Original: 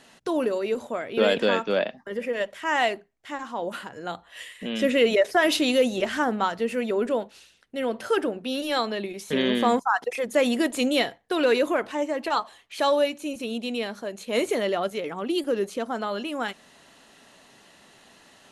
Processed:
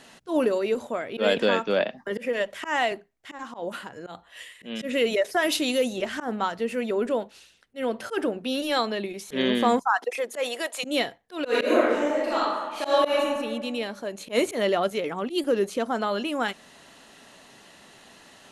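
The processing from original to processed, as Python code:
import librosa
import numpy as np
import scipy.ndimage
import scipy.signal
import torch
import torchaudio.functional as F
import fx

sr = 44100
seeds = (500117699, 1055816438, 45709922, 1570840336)

y = fx.band_squash(x, sr, depth_pct=70, at=(1.8, 2.92))
y = fx.high_shelf(y, sr, hz=6100.0, db=7.0, at=(4.93, 5.93))
y = fx.highpass(y, sr, hz=fx.line((9.94, 210.0), (10.83, 640.0)), slope=24, at=(9.94, 10.83), fade=0.02)
y = fx.reverb_throw(y, sr, start_s=11.46, length_s=1.74, rt60_s=1.4, drr_db=-8.5)
y = fx.auto_swell(y, sr, attack_ms=101.0)
y = fx.rider(y, sr, range_db=10, speed_s=2.0)
y = y * 10.0 ** (-3.0 / 20.0)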